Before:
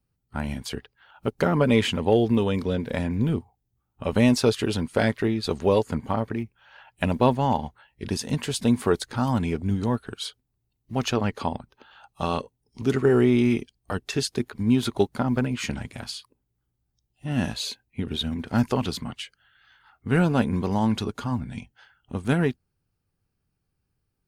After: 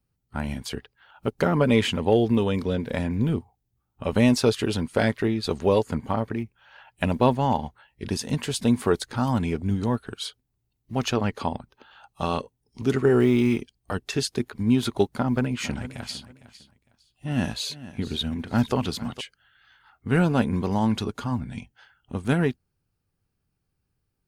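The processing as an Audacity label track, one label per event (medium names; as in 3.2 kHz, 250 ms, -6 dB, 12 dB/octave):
13.200000	13.600000	companding laws mixed up coded by A
15.050000	19.210000	feedback delay 456 ms, feedback 24%, level -16 dB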